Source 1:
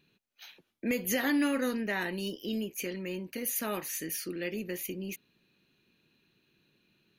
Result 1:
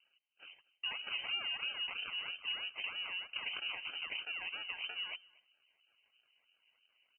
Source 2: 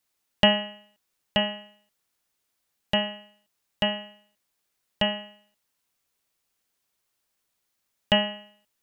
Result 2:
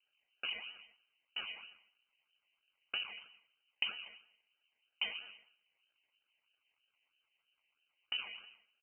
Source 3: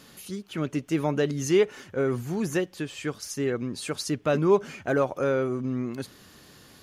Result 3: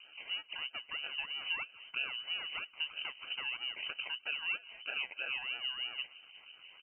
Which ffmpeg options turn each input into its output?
-filter_complex "[0:a]acompressor=threshold=0.0224:ratio=6,acrusher=samples=34:mix=1:aa=0.000001:lfo=1:lforange=20.4:lforate=3.1,acrossover=split=800[s0][s1];[s0]aeval=exprs='val(0)*(1-0.7/2+0.7/2*cos(2*PI*6*n/s))':c=same[s2];[s1]aeval=exprs='val(0)*(1-0.7/2-0.7/2*cos(2*PI*6*n/s))':c=same[s3];[s2][s3]amix=inputs=2:normalize=0,asuperstop=centerf=1300:order=4:qfactor=6.9,aecho=1:1:239:0.0631,lowpass=f=2600:t=q:w=0.5098,lowpass=f=2600:t=q:w=0.6013,lowpass=f=2600:t=q:w=0.9,lowpass=f=2600:t=q:w=2.563,afreqshift=-3100"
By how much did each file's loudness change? -5.5 LU, -15.5 LU, -10.5 LU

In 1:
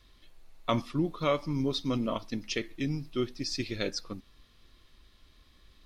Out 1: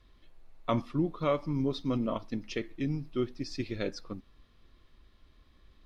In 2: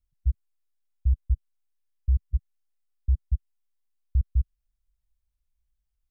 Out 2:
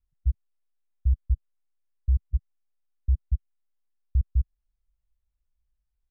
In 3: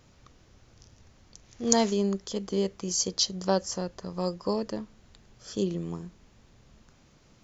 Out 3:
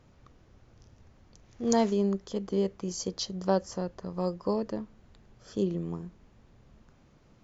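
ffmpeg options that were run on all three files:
-af "highshelf=f=2800:g=-12"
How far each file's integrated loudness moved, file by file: -1.0 LU, 0.0 LU, -2.0 LU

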